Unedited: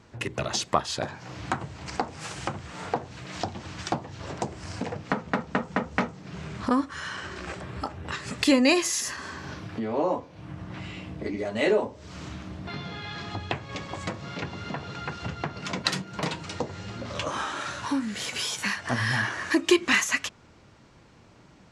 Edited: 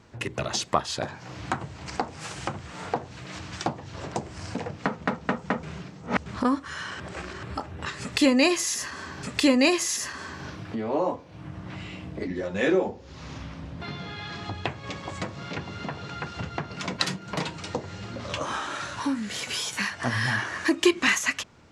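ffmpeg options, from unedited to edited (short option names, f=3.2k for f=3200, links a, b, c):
-filter_complex "[0:a]asplit=9[a][b][c][d][e][f][g][h][i];[a]atrim=end=3.392[j];[b]atrim=start=3.648:end=5.892[k];[c]atrim=start=5.888:end=6.522,asetpts=PTS-STARTPTS,areverse[l];[d]atrim=start=6.518:end=7.262[m];[e]atrim=start=7.258:end=7.692,asetpts=PTS-STARTPTS,areverse[n];[f]atrim=start=7.688:end=9.492[o];[g]atrim=start=8.268:end=11.314[p];[h]atrim=start=11.31:end=12.66,asetpts=PTS-STARTPTS,asetrate=38808,aresample=44100,atrim=end_sample=67653,asetpts=PTS-STARTPTS[q];[i]atrim=start=12.656[r];[j][k]acrossfade=d=0.004:c1=hsin:c2=hsin[s];[s][l]acrossfade=d=0.004:c1=hsin:c2=hsin[t];[t][m]acrossfade=d=0.004:c1=hsin:c2=hsin[u];[u][n]acrossfade=d=0.004:c1=hsin:c2=hsin[v];[v][o]acrossfade=d=0.004:c1=hsin:c2=hsin[w];[w][p]acrossfade=d=0.004:c1=hsin:c2=hsin[x];[x][q]acrossfade=d=0.004:c1=hsin:c2=hsin[y];[y][r]acrossfade=d=0.004:c1=hsin:c2=hsin"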